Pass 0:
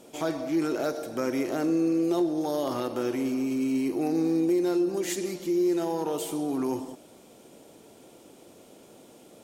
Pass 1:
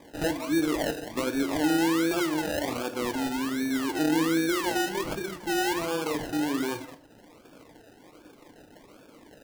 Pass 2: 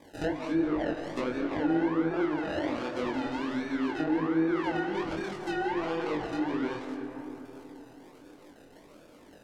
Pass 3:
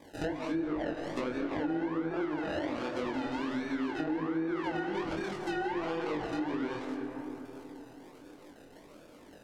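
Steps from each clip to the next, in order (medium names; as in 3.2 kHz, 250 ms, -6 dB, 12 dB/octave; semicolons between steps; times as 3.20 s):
decimation with a swept rate 31×, swing 60% 1.3 Hz; reverb removal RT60 0.56 s; on a send at -8.5 dB: reverberation RT60 0.60 s, pre-delay 3 ms
low-pass that closes with the level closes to 1.4 kHz, closed at -22 dBFS; algorithmic reverb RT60 4.1 s, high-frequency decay 0.35×, pre-delay 105 ms, DRR 7 dB; chorus 2.6 Hz, delay 19.5 ms, depth 5.4 ms
compression 4:1, threshold -30 dBFS, peak gain reduction 7 dB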